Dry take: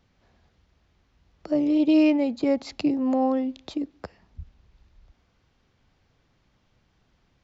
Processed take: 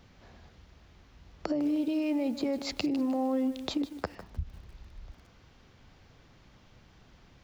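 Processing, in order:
brickwall limiter −21 dBFS, peak gain reduction 9.5 dB
downward compressor 4 to 1, threshold −38 dBFS, peak gain reduction 11.5 dB
feedback echo at a low word length 153 ms, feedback 35%, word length 9 bits, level −13 dB
level +8.5 dB

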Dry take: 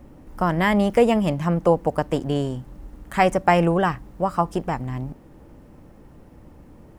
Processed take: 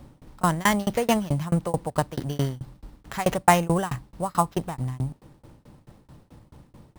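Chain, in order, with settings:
graphic EQ with 10 bands 125 Hz +9 dB, 1,000 Hz +5 dB, 4,000 Hz +10 dB, 8,000 Hz +11 dB
sample-rate reduction 9,100 Hz, jitter 0%
shaped tremolo saw down 4.6 Hz, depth 100%
level −2.5 dB

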